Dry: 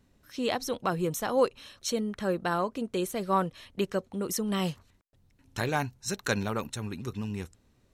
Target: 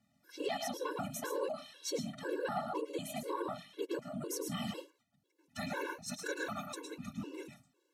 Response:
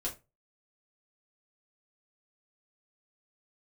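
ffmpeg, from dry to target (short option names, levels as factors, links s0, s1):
-filter_complex "[0:a]asplit=2[s0][s1];[1:a]atrim=start_sample=2205,lowshelf=f=310:g=-9,adelay=106[s2];[s1][s2]afir=irnorm=-1:irlink=0,volume=0.473[s3];[s0][s3]amix=inputs=2:normalize=0,afftfilt=real='hypot(re,im)*cos(2*PI*random(0))':imag='hypot(re,im)*sin(2*PI*random(1))':win_size=512:overlap=0.75,acontrast=37,alimiter=limit=0.0794:level=0:latency=1:release=47,highpass=180,afftfilt=real='re*gt(sin(2*PI*2*pts/sr)*(1-2*mod(floor(b*sr/1024/290),2)),0)':imag='im*gt(sin(2*PI*2*pts/sr)*(1-2*mod(floor(b*sr/1024/290),2)),0)':win_size=1024:overlap=0.75,volume=0.708"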